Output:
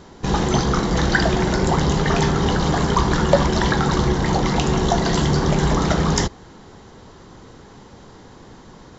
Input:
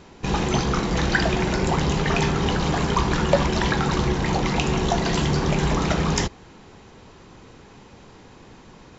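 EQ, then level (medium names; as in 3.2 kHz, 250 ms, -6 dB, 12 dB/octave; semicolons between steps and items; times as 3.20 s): peaking EQ 2.5 kHz -10 dB 0.34 oct; +3.5 dB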